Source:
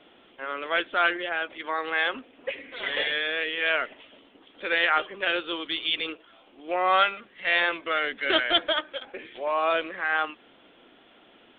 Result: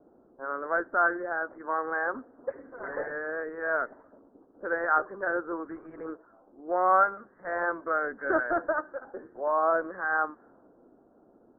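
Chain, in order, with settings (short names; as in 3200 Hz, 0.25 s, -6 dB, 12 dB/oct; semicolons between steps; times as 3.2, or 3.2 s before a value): low-pass opened by the level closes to 540 Hz, open at -24.5 dBFS; steep low-pass 1600 Hz 72 dB/oct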